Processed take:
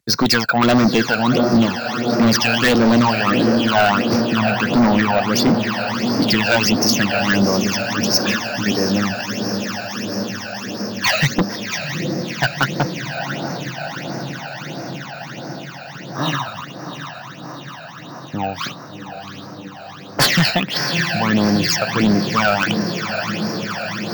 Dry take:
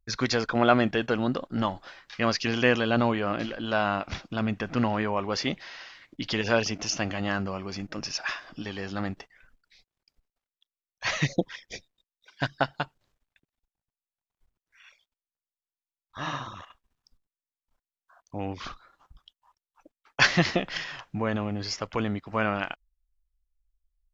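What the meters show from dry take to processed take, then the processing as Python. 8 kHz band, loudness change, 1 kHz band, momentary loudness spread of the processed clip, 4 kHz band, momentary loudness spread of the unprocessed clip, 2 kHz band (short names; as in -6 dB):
n/a, +10.5 dB, +11.0 dB, 17 LU, +13.5 dB, 17 LU, +10.5 dB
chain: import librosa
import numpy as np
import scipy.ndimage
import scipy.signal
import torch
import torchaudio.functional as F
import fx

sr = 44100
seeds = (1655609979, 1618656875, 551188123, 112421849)

p1 = scipy.signal.sosfilt(scipy.signal.butter(4, 130.0, 'highpass', fs=sr, output='sos'), x)
p2 = fx.high_shelf(p1, sr, hz=5800.0, db=5.5)
p3 = p2 + fx.echo_diffused(p2, sr, ms=715, feedback_pct=79, wet_db=-10.0, dry=0)
p4 = fx.phaser_stages(p3, sr, stages=12, low_hz=330.0, high_hz=3000.0, hz=1.5, feedback_pct=45)
p5 = fx.fold_sine(p4, sr, drive_db=14, ceiling_db=-8.0)
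p6 = p4 + F.gain(torch.from_numpy(p5), -8.0).numpy()
p7 = np.repeat(p6[::2], 2)[:len(p6)]
y = F.gain(torch.from_numpy(p7), 3.0).numpy()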